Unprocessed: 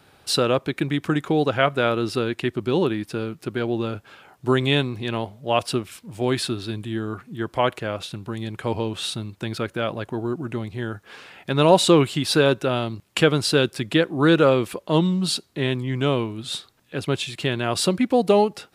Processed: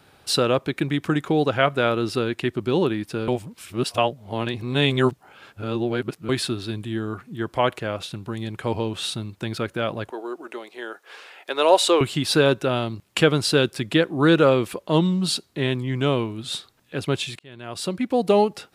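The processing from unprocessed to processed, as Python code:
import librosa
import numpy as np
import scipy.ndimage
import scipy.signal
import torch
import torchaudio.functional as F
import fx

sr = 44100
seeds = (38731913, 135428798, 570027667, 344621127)

y = fx.highpass(x, sr, hz=390.0, slope=24, at=(10.1, 12.01))
y = fx.edit(y, sr, fx.reverse_span(start_s=3.28, length_s=3.01),
    fx.fade_in_span(start_s=17.39, length_s=1.03), tone=tone)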